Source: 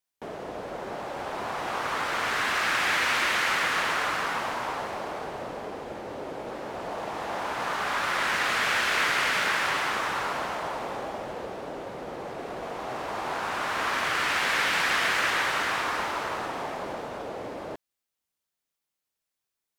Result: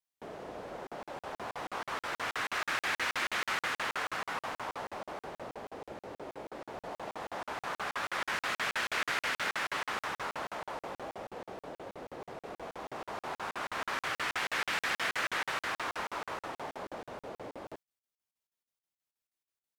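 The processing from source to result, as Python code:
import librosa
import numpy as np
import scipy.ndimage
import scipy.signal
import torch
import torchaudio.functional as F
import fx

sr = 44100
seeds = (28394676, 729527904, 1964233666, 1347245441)

y = fx.buffer_crackle(x, sr, first_s=0.87, period_s=0.16, block=2048, kind='zero')
y = y * 10.0 ** (-7.0 / 20.0)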